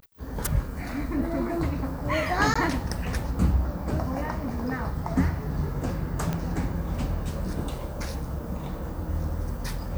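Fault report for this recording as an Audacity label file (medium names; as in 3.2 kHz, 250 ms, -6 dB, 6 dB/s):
2.540000	2.560000	dropout 15 ms
6.330000	6.330000	pop -15 dBFS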